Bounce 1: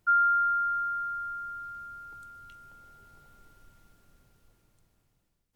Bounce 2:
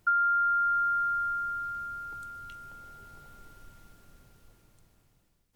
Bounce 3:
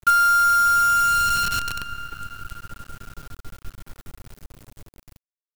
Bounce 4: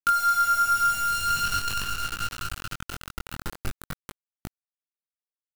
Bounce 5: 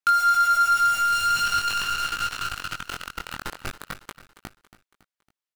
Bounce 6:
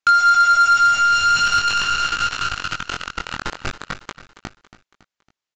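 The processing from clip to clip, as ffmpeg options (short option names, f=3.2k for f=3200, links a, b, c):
-af "acompressor=threshold=-30dB:ratio=5,volume=5.5dB"
-af "lowshelf=f=250:g=11,acrusher=bits=6:dc=4:mix=0:aa=0.000001,volume=8.5dB"
-af "acrusher=bits=4:mix=0:aa=0.000001,acompressor=threshold=-22dB:ratio=10,flanger=delay=18.5:depth=4.9:speed=0.46,volume=4dB"
-filter_complex "[0:a]aecho=1:1:278|556|834|1112:0.168|0.0806|0.0387|0.0186,asplit=2[a][b];[b]highpass=f=720:p=1,volume=11dB,asoftclip=type=tanh:threshold=-12dB[c];[a][c]amix=inputs=2:normalize=0,lowpass=f=4.6k:p=1,volume=-6dB"
-af "aresample=16000,aresample=44100,asoftclip=type=tanh:threshold=-13.5dB,volume=7dB"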